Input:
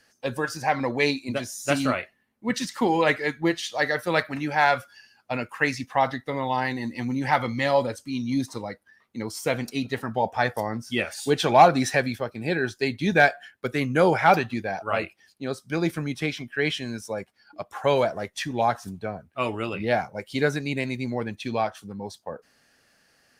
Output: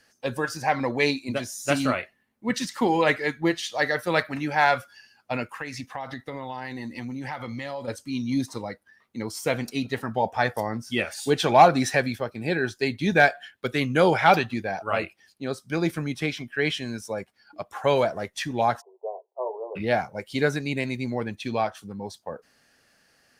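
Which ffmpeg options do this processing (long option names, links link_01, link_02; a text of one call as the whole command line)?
ffmpeg -i in.wav -filter_complex "[0:a]asettb=1/sr,asplit=3[link_01][link_02][link_03];[link_01]atrim=end=5.474[link_04];[link_02]atrim=start=5.47:end=7.88,asetpts=PTS-STARTPTS,afade=type=in:duration=0.004:curve=qsin,afade=type=out:start_time=2.406:duration=0.004:curve=qsin,acompressor=threshold=-30dB:ratio=6:attack=3.2:release=140:knee=1:detection=peak[link_05];[link_03]atrim=start=7.876[link_06];[link_04][link_05]acrossfade=duration=0.004:curve1=hsin:curve2=qsin[link_07];[link_07][link_06]acrossfade=duration=0.004:curve1=qsin:curve2=hsin,asettb=1/sr,asplit=3[link_08][link_09][link_10];[link_08]atrim=end=13.354[link_11];[link_09]atrim=start=13.35:end=14.45,asetpts=PTS-STARTPTS,afade=type=in:duration=0.004:curve=qsin,afade=type=out:start_time=1.096:duration=0.004:curve=qsin,equalizer=frequency=3400:width_type=o:width=0.68:gain=6.5[link_12];[link_10]atrim=start=14.446[link_13];[link_11][link_12]acrossfade=duration=0.004:curve1=hsin:curve2=qsin[link_14];[link_14][link_13]acrossfade=duration=0.004:curve1=qsin:curve2=hsin,asplit=3[link_15][link_16][link_17];[link_15]afade=type=out:start_time=18.8:duration=0.02[link_18];[link_16]asuperpass=centerf=620:order=20:qfactor=0.96,afade=type=in:start_time=18.8:duration=0.02,afade=type=out:start_time=19.75:duration=0.02[link_19];[link_17]afade=type=in:start_time=19.75:duration=0.02[link_20];[link_18][link_19][link_20]amix=inputs=3:normalize=0" out.wav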